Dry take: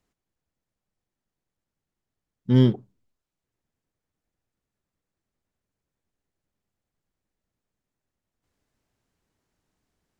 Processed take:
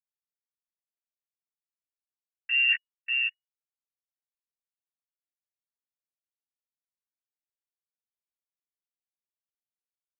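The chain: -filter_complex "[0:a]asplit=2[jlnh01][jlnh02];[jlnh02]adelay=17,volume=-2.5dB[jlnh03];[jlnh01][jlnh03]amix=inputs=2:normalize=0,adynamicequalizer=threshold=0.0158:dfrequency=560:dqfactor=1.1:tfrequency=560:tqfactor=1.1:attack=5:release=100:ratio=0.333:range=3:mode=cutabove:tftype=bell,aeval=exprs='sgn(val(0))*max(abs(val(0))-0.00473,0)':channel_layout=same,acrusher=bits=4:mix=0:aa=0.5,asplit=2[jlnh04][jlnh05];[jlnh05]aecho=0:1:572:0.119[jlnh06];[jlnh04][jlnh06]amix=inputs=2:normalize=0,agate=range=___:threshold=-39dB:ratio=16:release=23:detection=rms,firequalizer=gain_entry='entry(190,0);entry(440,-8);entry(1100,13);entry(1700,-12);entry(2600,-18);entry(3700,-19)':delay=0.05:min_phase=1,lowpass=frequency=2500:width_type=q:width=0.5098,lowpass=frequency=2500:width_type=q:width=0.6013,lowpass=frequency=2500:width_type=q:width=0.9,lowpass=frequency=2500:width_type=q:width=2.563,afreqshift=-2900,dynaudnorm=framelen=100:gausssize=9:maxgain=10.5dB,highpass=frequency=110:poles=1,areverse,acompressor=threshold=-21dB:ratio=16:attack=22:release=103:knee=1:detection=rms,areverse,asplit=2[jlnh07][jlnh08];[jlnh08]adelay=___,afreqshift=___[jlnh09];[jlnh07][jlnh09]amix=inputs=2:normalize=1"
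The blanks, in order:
-38dB, 2.2, -0.33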